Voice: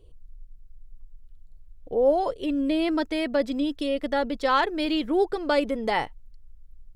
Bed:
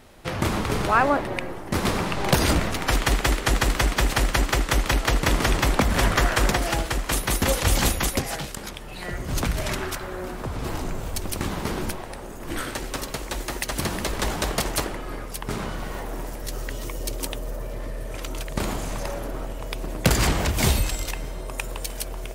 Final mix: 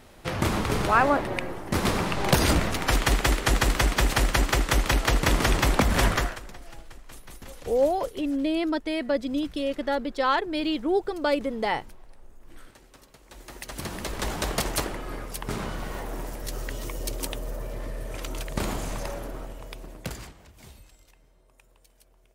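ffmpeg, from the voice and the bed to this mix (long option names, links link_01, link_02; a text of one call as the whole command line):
ffmpeg -i stem1.wav -i stem2.wav -filter_complex "[0:a]adelay=5750,volume=-1.5dB[link_01];[1:a]volume=19.5dB,afade=type=out:start_time=6.06:duration=0.34:silence=0.0841395,afade=type=in:start_time=13.22:duration=1.37:silence=0.0944061,afade=type=out:start_time=18.87:duration=1.46:silence=0.0473151[link_02];[link_01][link_02]amix=inputs=2:normalize=0" out.wav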